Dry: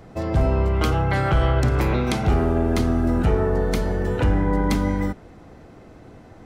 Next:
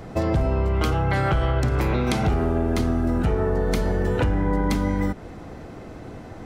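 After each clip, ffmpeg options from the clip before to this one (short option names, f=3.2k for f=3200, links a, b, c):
-af "acompressor=threshold=-25dB:ratio=6,volume=6.5dB"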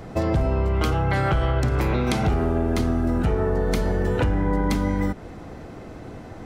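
-af anull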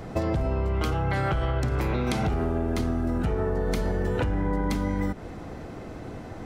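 -af "acompressor=threshold=-22dB:ratio=6"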